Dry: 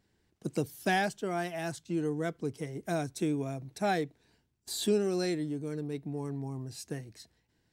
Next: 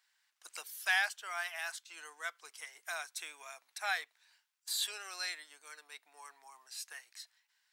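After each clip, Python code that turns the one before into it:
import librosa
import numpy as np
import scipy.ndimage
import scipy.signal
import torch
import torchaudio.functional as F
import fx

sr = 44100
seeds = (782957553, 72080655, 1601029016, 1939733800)

y = scipy.signal.sosfilt(scipy.signal.butter(4, 1100.0, 'highpass', fs=sr, output='sos'), x)
y = fx.dynamic_eq(y, sr, hz=6800.0, q=1.0, threshold_db=-52.0, ratio=4.0, max_db=-4)
y = F.gain(torch.from_numpy(y), 3.5).numpy()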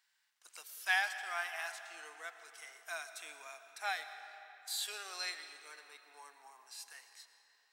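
y = fx.hpss(x, sr, part='percussive', gain_db=-9)
y = fx.rev_freeverb(y, sr, rt60_s=3.5, hf_ratio=0.7, predelay_ms=70, drr_db=9.0)
y = F.gain(torch.from_numpy(y), 1.5).numpy()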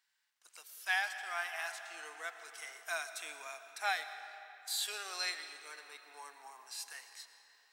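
y = fx.rider(x, sr, range_db=4, speed_s=2.0)
y = F.gain(torch.from_numpy(y), 1.0).numpy()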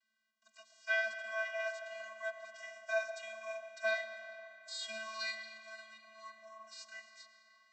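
y = fx.vocoder(x, sr, bands=32, carrier='square', carrier_hz=220.0)
y = y + 10.0 ** (-23.0 / 20.0) * np.pad(y, (int(1001 * sr / 1000.0), 0))[:len(y)]
y = F.gain(torch.from_numpy(y), 1.5).numpy()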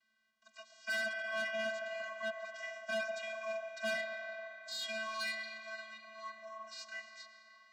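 y = fx.air_absorb(x, sr, metres=71.0)
y = 10.0 ** (-38.5 / 20.0) * np.tanh(y / 10.0 ** (-38.5 / 20.0))
y = F.gain(torch.from_numpy(y), 6.0).numpy()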